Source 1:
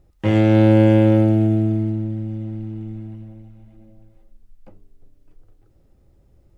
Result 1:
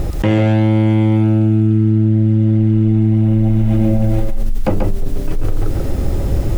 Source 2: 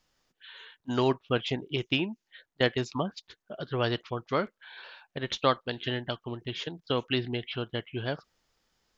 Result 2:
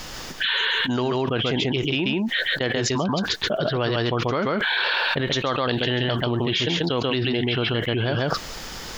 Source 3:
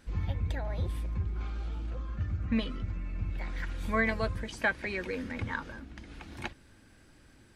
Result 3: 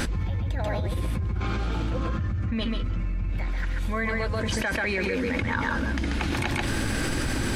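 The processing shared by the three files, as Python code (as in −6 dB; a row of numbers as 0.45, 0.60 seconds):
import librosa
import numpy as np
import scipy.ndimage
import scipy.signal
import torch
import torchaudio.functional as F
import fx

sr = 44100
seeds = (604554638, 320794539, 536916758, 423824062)

p1 = x + fx.echo_single(x, sr, ms=137, db=-4.5, dry=0)
p2 = fx.env_flatten(p1, sr, amount_pct=100)
y = p2 * 10.0 ** (-2.5 / 20.0)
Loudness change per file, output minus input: +2.0, +8.5, +6.5 LU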